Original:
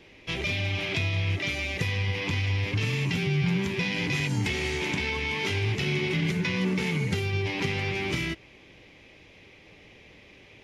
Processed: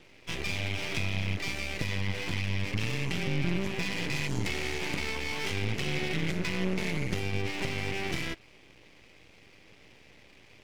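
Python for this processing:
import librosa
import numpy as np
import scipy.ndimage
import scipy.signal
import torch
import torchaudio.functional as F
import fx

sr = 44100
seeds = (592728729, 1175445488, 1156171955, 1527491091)

y = np.maximum(x, 0.0)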